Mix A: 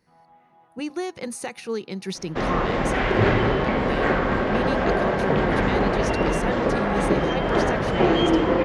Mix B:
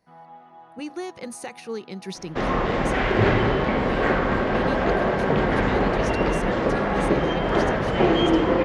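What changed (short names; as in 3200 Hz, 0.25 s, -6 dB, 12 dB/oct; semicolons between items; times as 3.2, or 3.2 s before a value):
speech -3.5 dB; first sound +9.5 dB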